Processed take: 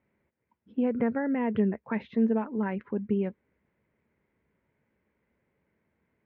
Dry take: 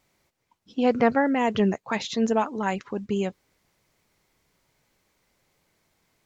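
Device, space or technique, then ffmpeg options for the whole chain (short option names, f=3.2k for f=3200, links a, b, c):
bass amplifier: -af "acompressor=threshold=-22dB:ratio=4,highpass=63,equalizer=f=66:t=q:w=4:g=7,equalizer=f=220:t=q:w=4:g=7,equalizer=f=430:t=q:w=4:g=3,equalizer=f=750:t=q:w=4:g=-7,equalizer=f=1.2k:t=q:w=4:g=-7,lowpass=f=2.1k:w=0.5412,lowpass=f=2.1k:w=1.3066,volume=-3.5dB"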